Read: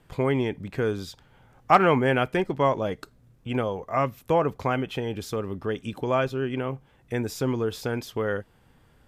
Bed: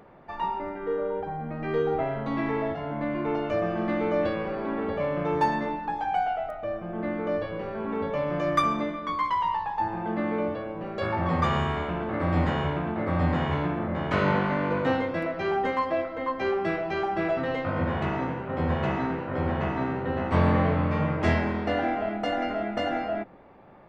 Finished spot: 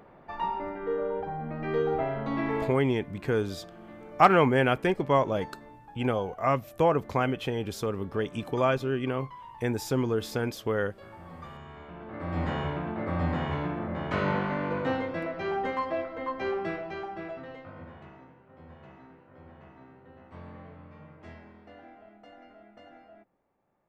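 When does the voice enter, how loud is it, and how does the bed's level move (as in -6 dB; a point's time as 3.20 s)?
2.50 s, -1.0 dB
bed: 2.62 s -1.5 dB
2.86 s -20 dB
11.61 s -20 dB
12.53 s -4 dB
16.57 s -4 dB
18.31 s -24 dB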